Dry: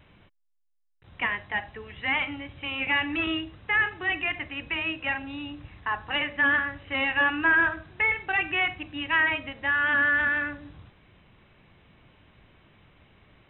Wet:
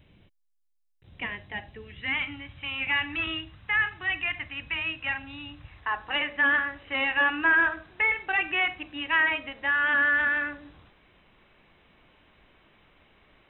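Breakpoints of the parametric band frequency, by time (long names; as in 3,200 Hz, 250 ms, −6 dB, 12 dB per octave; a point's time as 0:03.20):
parametric band −10.5 dB 1.7 octaves
0:01.72 1,200 Hz
0:02.54 410 Hz
0:05.53 410 Hz
0:05.99 110 Hz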